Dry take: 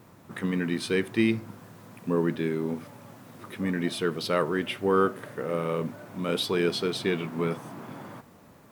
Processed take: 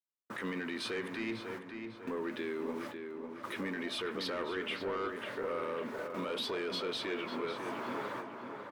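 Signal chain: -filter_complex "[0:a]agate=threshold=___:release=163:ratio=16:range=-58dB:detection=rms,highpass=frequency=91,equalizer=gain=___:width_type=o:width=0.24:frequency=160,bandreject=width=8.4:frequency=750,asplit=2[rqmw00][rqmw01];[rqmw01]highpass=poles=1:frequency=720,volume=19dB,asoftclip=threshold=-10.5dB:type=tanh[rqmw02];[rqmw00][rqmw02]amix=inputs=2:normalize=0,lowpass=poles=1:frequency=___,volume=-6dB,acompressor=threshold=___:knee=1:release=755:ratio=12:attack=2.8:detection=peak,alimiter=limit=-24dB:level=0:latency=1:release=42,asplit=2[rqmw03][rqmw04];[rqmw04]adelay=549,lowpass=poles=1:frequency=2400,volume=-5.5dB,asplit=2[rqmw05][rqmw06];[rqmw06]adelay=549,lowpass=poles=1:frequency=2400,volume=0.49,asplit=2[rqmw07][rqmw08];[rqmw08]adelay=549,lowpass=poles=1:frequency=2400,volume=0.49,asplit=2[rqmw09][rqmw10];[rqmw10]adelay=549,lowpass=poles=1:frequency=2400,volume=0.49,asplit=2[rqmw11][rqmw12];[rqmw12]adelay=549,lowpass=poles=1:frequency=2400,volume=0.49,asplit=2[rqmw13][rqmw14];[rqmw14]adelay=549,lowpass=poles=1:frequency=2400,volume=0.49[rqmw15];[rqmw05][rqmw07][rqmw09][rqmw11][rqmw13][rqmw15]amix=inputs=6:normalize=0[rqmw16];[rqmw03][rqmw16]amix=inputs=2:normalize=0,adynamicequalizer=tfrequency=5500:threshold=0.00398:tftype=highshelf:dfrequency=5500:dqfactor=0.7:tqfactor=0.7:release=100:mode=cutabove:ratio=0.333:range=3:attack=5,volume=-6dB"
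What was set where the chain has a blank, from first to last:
-42dB, -13.5, 3600, -23dB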